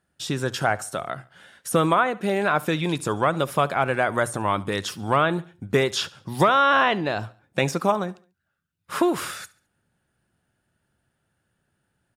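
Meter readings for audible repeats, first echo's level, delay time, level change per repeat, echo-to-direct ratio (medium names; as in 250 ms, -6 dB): 2, -21.5 dB, 70 ms, -7.5 dB, -20.5 dB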